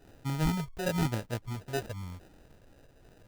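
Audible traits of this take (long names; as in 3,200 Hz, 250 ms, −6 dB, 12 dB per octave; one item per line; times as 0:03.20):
phaser sweep stages 6, 0.99 Hz, lowest notch 240–1,000 Hz
aliases and images of a low sample rate 1,100 Hz, jitter 0%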